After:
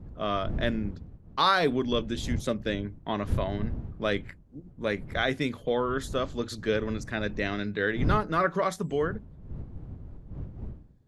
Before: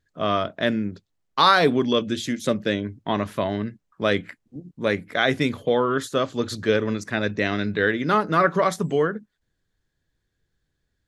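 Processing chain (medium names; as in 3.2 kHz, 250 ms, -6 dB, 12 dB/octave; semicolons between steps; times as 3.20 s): wind noise 120 Hz -30 dBFS; trim -6.5 dB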